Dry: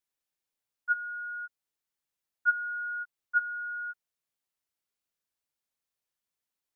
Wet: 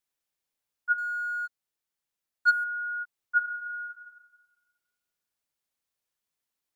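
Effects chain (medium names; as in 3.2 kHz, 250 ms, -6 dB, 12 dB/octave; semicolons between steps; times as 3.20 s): 0.98–2.64 s: waveshaping leveller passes 1; 3.38–3.84 s: reverb throw, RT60 1.4 s, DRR 0.5 dB; trim +2 dB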